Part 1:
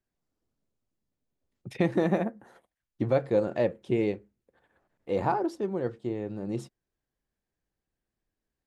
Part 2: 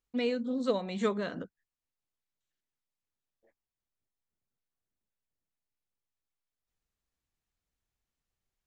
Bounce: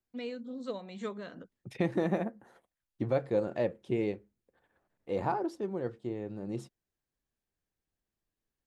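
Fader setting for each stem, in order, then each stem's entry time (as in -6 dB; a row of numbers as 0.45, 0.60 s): -4.5, -8.5 dB; 0.00, 0.00 s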